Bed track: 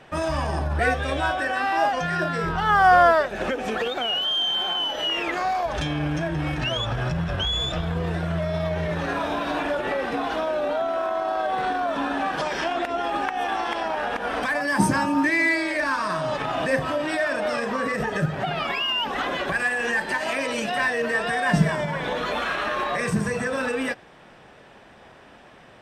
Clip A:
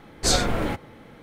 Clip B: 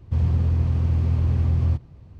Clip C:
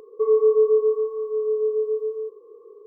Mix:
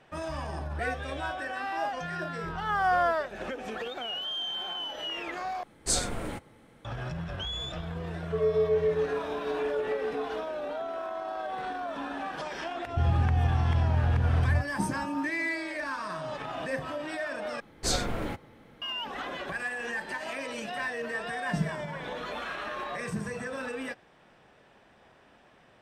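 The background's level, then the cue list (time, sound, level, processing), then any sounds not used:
bed track -10 dB
5.63 s: replace with A -10 dB + peaking EQ 8.7 kHz +11.5 dB 0.62 oct
8.13 s: add C -8.5 dB
12.85 s: add B -4.5 dB
17.60 s: replace with A -7.5 dB

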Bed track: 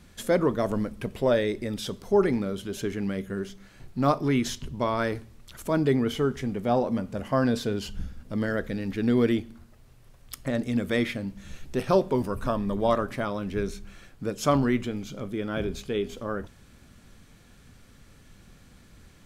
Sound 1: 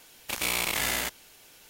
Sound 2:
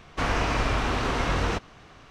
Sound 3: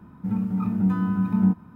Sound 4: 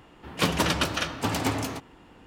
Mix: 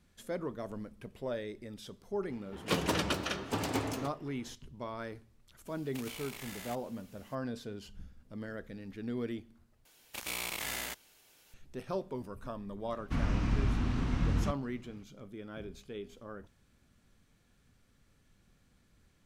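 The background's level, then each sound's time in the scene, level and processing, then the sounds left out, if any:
bed track -14.5 dB
2.29 s: add 4 -8 dB + peaking EQ 420 Hz +5 dB 0.9 oct
5.66 s: add 1 -10 dB + compression, threshold -32 dBFS
9.85 s: replace with 1 -9.5 dB
12.93 s: add 2 -15 dB + resonant low shelf 330 Hz +12.5 dB, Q 1.5
not used: 3

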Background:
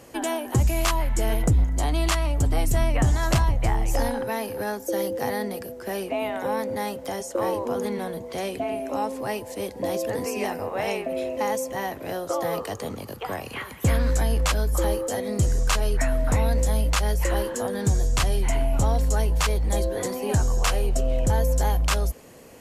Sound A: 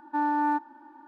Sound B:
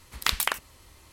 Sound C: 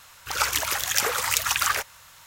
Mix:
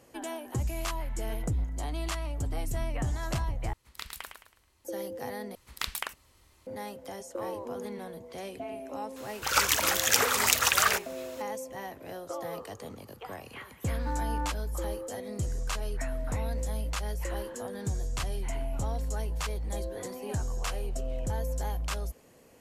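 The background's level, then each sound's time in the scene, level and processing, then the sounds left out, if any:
background -10.5 dB
3.73 s: replace with B -16 dB + feedback delay 108 ms, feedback 36%, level -6.5 dB
5.55 s: replace with B -8.5 dB
9.16 s: add C -0.5 dB
13.92 s: add A -10.5 dB

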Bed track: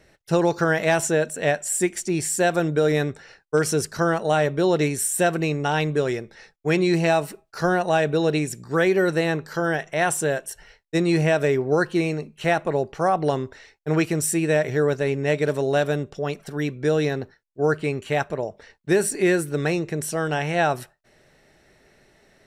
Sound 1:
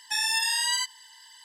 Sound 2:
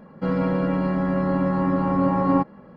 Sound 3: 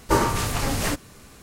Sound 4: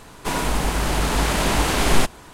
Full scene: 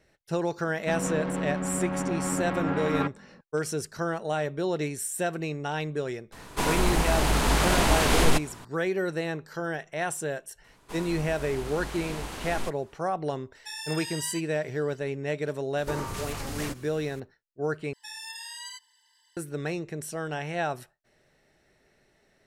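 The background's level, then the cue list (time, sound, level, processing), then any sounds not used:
bed track -8.5 dB
0.65 s: add 2 -7.5 dB + self-modulated delay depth 0.56 ms
6.32 s: add 4 -2.5 dB + peak limiter -7 dBFS
10.64 s: add 4 -17 dB
13.55 s: add 1 -11.5 dB
15.78 s: add 3 -3.5 dB + compression, threshold -27 dBFS
17.93 s: replace with 1 -14.5 dB

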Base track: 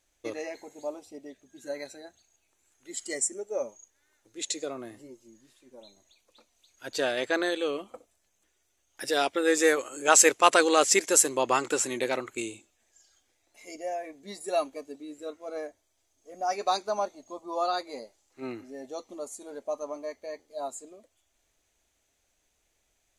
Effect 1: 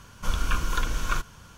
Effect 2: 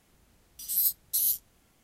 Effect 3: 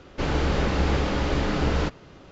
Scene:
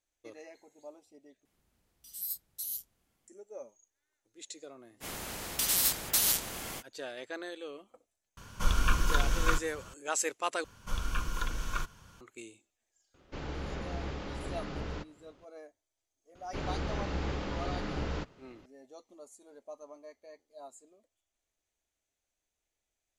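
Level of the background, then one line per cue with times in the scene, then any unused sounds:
base track -13.5 dB
1.45 s: replace with 2 -11.5 dB
5.00 s: add 2 -0.5 dB, fades 0.05 s + spectrum-flattening compressor 4:1
8.37 s: add 1 -1 dB
10.64 s: replace with 1 -7.5 dB
13.14 s: add 3 -15 dB
16.35 s: add 3 -11.5 dB

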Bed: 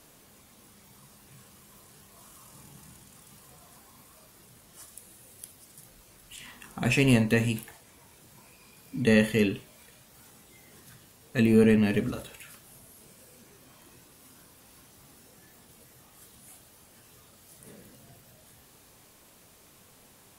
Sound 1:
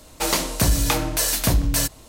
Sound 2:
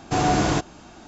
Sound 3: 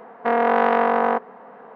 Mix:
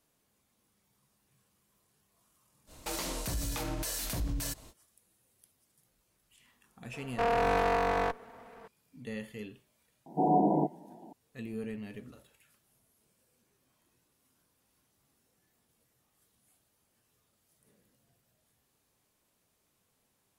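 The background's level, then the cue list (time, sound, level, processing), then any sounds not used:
bed -19 dB
2.66 s: add 1 -7 dB, fades 0.05 s + peak limiter -19.5 dBFS
6.93 s: add 3 -7.5 dB + comb filter that takes the minimum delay 4.4 ms
10.06 s: add 2 -4 dB + FFT band-pass 140–1000 Hz

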